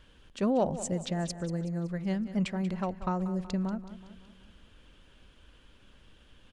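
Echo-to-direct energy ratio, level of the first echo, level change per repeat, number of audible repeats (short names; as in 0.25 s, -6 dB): -12.0 dB, -13.5 dB, -6.0 dB, 4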